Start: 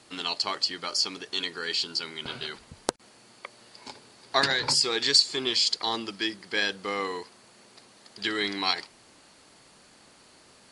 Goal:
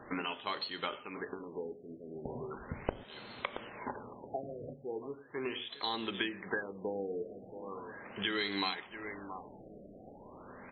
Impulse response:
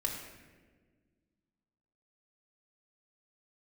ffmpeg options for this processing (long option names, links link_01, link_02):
-filter_complex "[0:a]aecho=1:1:675|1350:0.0891|0.0267,acompressor=threshold=-38dB:ratio=12,asplit=2[link_01][link_02];[1:a]atrim=start_sample=2205,afade=type=out:start_time=0.19:duration=0.01,atrim=end_sample=8820,asetrate=39690,aresample=44100[link_03];[link_02][link_03]afir=irnorm=-1:irlink=0,volume=-10.5dB[link_04];[link_01][link_04]amix=inputs=2:normalize=0,afftfilt=real='re*lt(b*sr/1024,720*pow(4400/720,0.5+0.5*sin(2*PI*0.38*pts/sr)))':imag='im*lt(b*sr/1024,720*pow(4400/720,0.5+0.5*sin(2*PI*0.38*pts/sr)))':win_size=1024:overlap=0.75,volume=5.5dB"